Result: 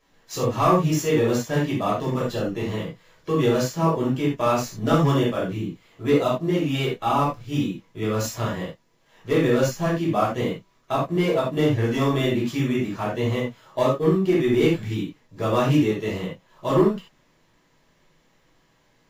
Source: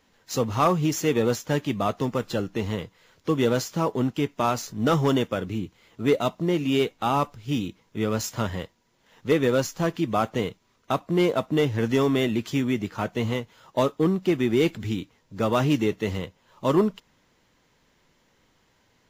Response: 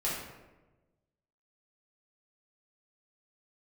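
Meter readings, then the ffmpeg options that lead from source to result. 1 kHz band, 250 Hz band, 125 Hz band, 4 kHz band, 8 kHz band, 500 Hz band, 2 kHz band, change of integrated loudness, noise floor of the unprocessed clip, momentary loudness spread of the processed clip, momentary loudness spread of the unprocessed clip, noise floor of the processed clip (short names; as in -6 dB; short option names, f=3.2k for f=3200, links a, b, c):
+2.5 dB, +2.0 dB, +3.5 dB, +0.5 dB, 0.0 dB, +2.5 dB, +1.5 dB, +2.0 dB, -66 dBFS, 10 LU, 10 LU, -63 dBFS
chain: -filter_complex "[1:a]atrim=start_sample=2205,afade=t=out:st=0.14:d=0.01,atrim=end_sample=6615,asetrate=41013,aresample=44100[a];[0:a][a]afir=irnorm=-1:irlink=0,volume=-4dB"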